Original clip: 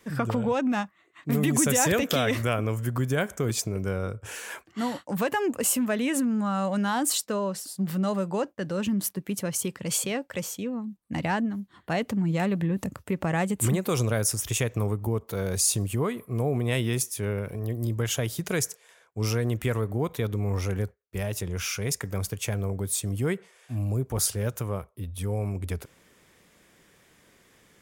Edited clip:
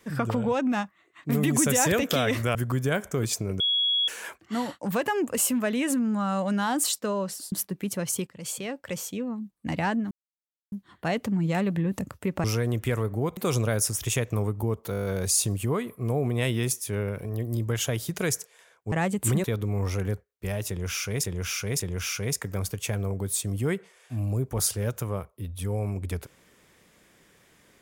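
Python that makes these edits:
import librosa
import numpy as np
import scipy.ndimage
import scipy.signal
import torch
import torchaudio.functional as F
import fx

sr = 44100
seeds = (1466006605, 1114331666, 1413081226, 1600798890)

y = fx.edit(x, sr, fx.cut(start_s=2.55, length_s=0.26),
    fx.bleep(start_s=3.86, length_s=0.48, hz=3340.0, db=-21.0),
    fx.cut(start_s=7.78, length_s=1.2),
    fx.fade_in_from(start_s=9.73, length_s=0.78, floor_db=-13.0),
    fx.insert_silence(at_s=11.57, length_s=0.61),
    fx.swap(start_s=13.29, length_s=0.52, other_s=19.22, other_length_s=0.93),
    fx.stutter(start_s=15.35, slice_s=0.02, count=8),
    fx.repeat(start_s=21.39, length_s=0.56, count=3), tone=tone)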